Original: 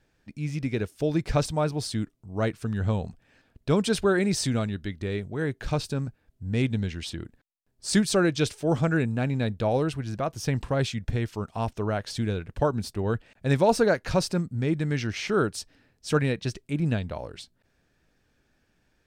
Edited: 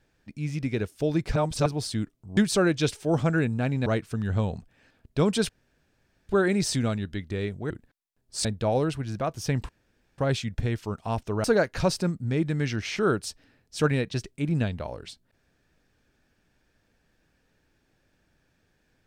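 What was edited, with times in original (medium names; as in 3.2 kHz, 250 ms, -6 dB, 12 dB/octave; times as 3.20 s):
1.36–1.66 s: reverse
4.00 s: insert room tone 0.80 s
5.41–7.20 s: delete
7.95–9.44 s: move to 2.37 s
10.68 s: insert room tone 0.49 s
11.94–13.75 s: delete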